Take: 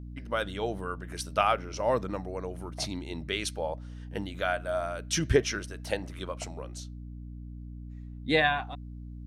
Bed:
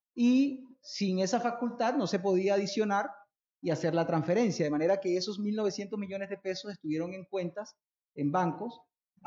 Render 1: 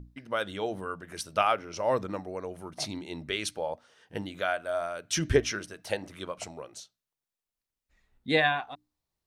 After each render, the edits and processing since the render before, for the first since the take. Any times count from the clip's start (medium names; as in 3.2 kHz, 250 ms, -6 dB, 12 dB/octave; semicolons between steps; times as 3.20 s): hum notches 60/120/180/240/300 Hz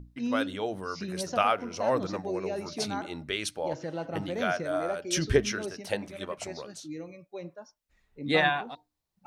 add bed -6.5 dB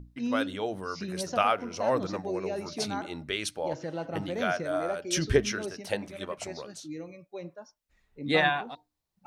no audible change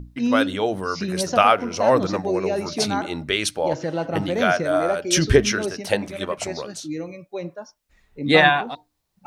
trim +9.5 dB; peak limiter -2 dBFS, peak gain reduction 2.5 dB